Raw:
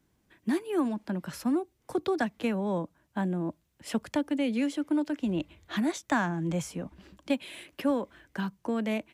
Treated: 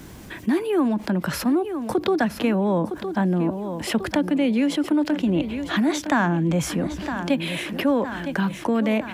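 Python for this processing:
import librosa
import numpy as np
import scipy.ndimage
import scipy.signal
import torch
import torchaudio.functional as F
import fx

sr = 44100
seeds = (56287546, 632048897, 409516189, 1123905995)

p1 = fx.dynamic_eq(x, sr, hz=7700.0, q=0.72, threshold_db=-58.0, ratio=4.0, max_db=-8)
p2 = p1 + fx.echo_feedback(p1, sr, ms=962, feedback_pct=45, wet_db=-16.5, dry=0)
p3 = fx.env_flatten(p2, sr, amount_pct=50)
y = p3 * 10.0 ** (5.5 / 20.0)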